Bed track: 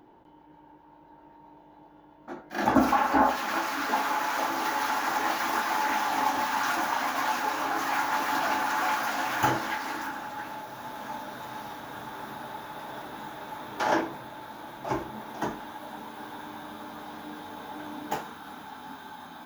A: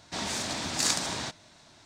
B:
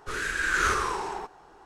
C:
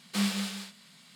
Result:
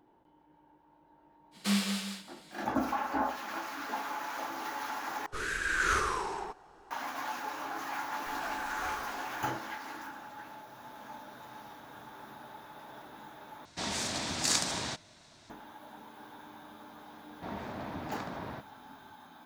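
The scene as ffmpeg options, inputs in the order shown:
ffmpeg -i bed.wav -i cue0.wav -i cue1.wav -i cue2.wav -filter_complex "[2:a]asplit=2[link_01][link_02];[1:a]asplit=2[link_03][link_04];[0:a]volume=-9.5dB[link_05];[3:a]aecho=1:1:169:0.168[link_06];[link_04]lowpass=1300[link_07];[link_05]asplit=3[link_08][link_09][link_10];[link_08]atrim=end=5.264[link_11];[link_01]atrim=end=1.65,asetpts=PTS-STARTPTS,volume=-4dB[link_12];[link_09]atrim=start=6.906:end=13.654[link_13];[link_03]atrim=end=1.85,asetpts=PTS-STARTPTS,volume=-2dB[link_14];[link_10]atrim=start=15.496[link_15];[link_06]atrim=end=1.15,asetpts=PTS-STARTPTS,volume=-0.5dB,afade=type=in:duration=0.05,afade=type=out:start_time=1.1:duration=0.05,adelay=1510[link_16];[link_02]atrim=end=1.65,asetpts=PTS-STARTPTS,volume=-17dB,afade=type=in:duration=0.004:curve=hsin,afade=type=out:start_time=1.646:duration=0.004:curve=hsin,adelay=8190[link_17];[link_07]atrim=end=1.85,asetpts=PTS-STARTPTS,volume=-3.5dB,afade=type=in:duration=0.004:curve=hsin,afade=type=out:start_time=1.846:duration=0.004:curve=hsin,adelay=17300[link_18];[link_11][link_12]acrossfade=duration=0.004:curve1=hsin:curve2=hsin[link_19];[link_19][link_13]acrossfade=duration=0.004:curve1=hsin:curve2=hsin[link_20];[link_20][link_14]acrossfade=duration=0.004:curve1=hsin:curve2=hsin[link_21];[link_21][link_15]acrossfade=duration=0.004:curve1=hsin:curve2=hsin[link_22];[link_22][link_16][link_17][link_18]amix=inputs=4:normalize=0" out.wav

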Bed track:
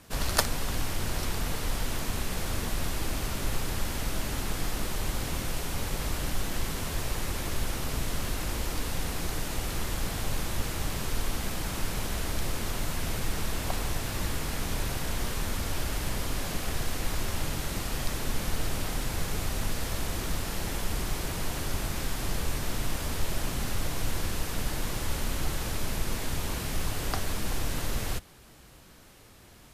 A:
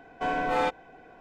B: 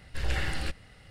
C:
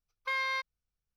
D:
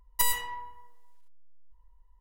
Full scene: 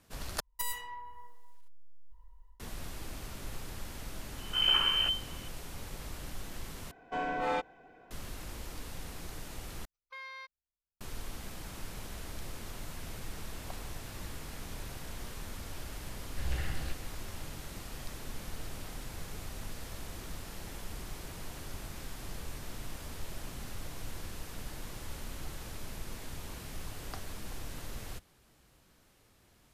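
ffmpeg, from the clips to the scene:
ffmpeg -i bed.wav -i cue0.wav -i cue1.wav -i cue2.wav -i cue3.wav -filter_complex "[2:a]asplit=2[link_01][link_02];[0:a]volume=-11.5dB[link_03];[4:a]dynaudnorm=framelen=210:gausssize=3:maxgain=16dB[link_04];[link_01]lowpass=frequency=2600:width_type=q:width=0.5098,lowpass=frequency=2600:width_type=q:width=0.6013,lowpass=frequency=2600:width_type=q:width=0.9,lowpass=frequency=2600:width_type=q:width=2.563,afreqshift=-3100[link_05];[link_02]bass=frequency=250:gain=6,treble=frequency=4000:gain=-1[link_06];[link_03]asplit=4[link_07][link_08][link_09][link_10];[link_07]atrim=end=0.404[link_11];[link_04]atrim=end=2.2,asetpts=PTS-STARTPTS,volume=-11.5dB[link_12];[link_08]atrim=start=2.596:end=6.914[link_13];[1:a]atrim=end=1.2,asetpts=PTS-STARTPTS,volume=-6dB[link_14];[link_09]atrim=start=8.106:end=9.854[link_15];[3:a]atrim=end=1.16,asetpts=PTS-STARTPTS,volume=-13.5dB[link_16];[link_10]atrim=start=11.006[link_17];[link_05]atrim=end=1.1,asetpts=PTS-STARTPTS,afade=type=in:duration=0.004:curve=hsin,afade=type=out:start_time=1.096:duration=0.004:curve=hsin,adelay=4380[link_18];[link_06]atrim=end=1.1,asetpts=PTS-STARTPTS,volume=-10dB,afade=type=in:duration=0.004:curve=hsin,afade=type=out:start_time=1.096:duration=0.004:curve=hsin,adelay=16220[link_19];[link_11][link_12]acrossfade=duration=0.004:curve1=hsin:curve2=hsin[link_20];[link_20][link_13]acrossfade=duration=0.004:curve1=hsin:curve2=hsin[link_21];[link_21][link_14]acrossfade=duration=0.004:curve1=hsin:curve2=hsin[link_22];[link_22][link_15]acrossfade=duration=0.004:curve1=hsin:curve2=hsin[link_23];[link_23][link_16]acrossfade=duration=0.004:curve1=hsin:curve2=hsin[link_24];[link_24][link_17]acrossfade=duration=0.004:curve1=hsin:curve2=hsin[link_25];[link_25][link_18][link_19]amix=inputs=3:normalize=0" out.wav

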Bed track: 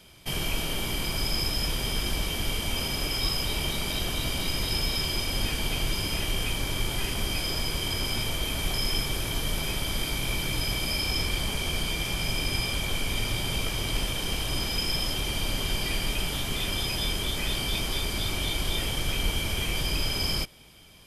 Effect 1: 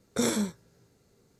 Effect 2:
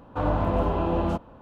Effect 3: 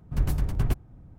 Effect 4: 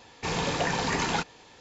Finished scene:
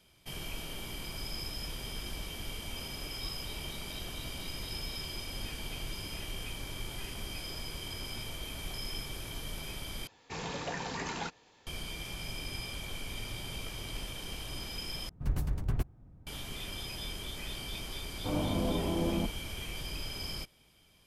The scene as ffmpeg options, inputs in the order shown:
ffmpeg -i bed.wav -i cue0.wav -i cue1.wav -i cue2.wav -i cue3.wav -filter_complex "[0:a]volume=-11.5dB[link_01];[2:a]equalizer=frequency=230:width=0.42:gain=14.5[link_02];[link_01]asplit=3[link_03][link_04][link_05];[link_03]atrim=end=10.074[link_06];[4:a]atrim=end=1.6,asetpts=PTS-STARTPTS,volume=-10dB[link_07];[link_04]atrim=start=11.666:end=15.094[link_08];[3:a]atrim=end=1.18,asetpts=PTS-STARTPTS,volume=-6.5dB[link_09];[link_05]atrim=start=16.266[link_10];[link_02]atrim=end=1.41,asetpts=PTS-STARTPTS,volume=-17.5dB,afade=type=in:duration=0.004:curve=hsin,afade=type=out:start_time=1.406:duration=0.004:curve=hsin,adelay=18090[link_11];[link_06][link_07]acrossfade=duration=0.004:curve1=hsin:curve2=hsin[link_12];[link_12][link_08]acrossfade=duration=0.004:curve1=hsin:curve2=hsin[link_13];[link_13][link_09]acrossfade=duration=0.004:curve1=hsin:curve2=hsin[link_14];[link_14][link_10]acrossfade=duration=0.004:curve1=hsin:curve2=hsin[link_15];[link_15][link_11]amix=inputs=2:normalize=0" out.wav

